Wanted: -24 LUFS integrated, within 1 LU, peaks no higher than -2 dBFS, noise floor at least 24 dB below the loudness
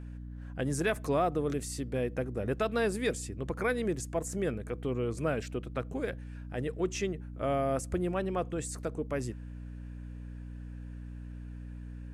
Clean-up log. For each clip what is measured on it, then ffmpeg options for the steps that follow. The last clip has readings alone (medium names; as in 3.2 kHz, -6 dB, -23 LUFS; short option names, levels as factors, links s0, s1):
hum 60 Hz; highest harmonic 300 Hz; hum level -40 dBFS; loudness -33.5 LUFS; peak level -18.0 dBFS; loudness target -24.0 LUFS
-> -af "bandreject=f=60:t=h:w=6,bandreject=f=120:t=h:w=6,bandreject=f=180:t=h:w=6,bandreject=f=240:t=h:w=6,bandreject=f=300:t=h:w=6"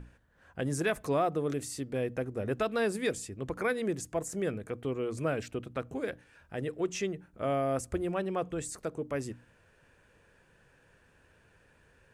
hum not found; loudness -33.5 LUFS; peak level -19.0 dBFS; loudness target -24.0 LUFS
-> -af "volume=2.99"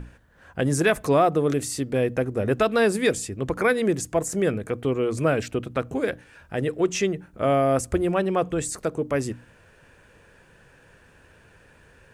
loudness -24.0 LUFS; peak level -9.5 dBFS; noise floor -55 dBFS